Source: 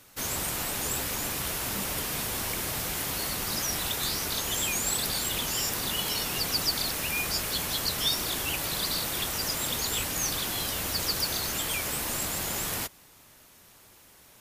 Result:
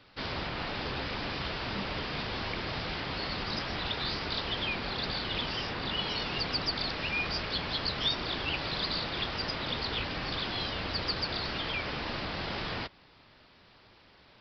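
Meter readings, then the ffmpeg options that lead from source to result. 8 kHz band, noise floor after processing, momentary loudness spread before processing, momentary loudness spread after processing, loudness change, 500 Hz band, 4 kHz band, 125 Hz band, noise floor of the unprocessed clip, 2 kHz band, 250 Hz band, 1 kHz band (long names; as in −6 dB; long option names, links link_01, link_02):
−30.0 dB, −59 dBFS, 4 LU, 5 LU, −4.5 dB, 0.0 dB, −2.0 dB, 0.0 dB, −56 dBFS, −0.5 dB, 0.0 dB, 0.0 dB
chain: -filter_complex "[0:a]acrossover=split=3400[link_01][link_02];[link_02]alimiter=limit=-23dB:level=0:latency=1:release=425[link_03];[link_01][link_03]amix=inputs=2:normalize=0,aresample=11025,aresample=44100"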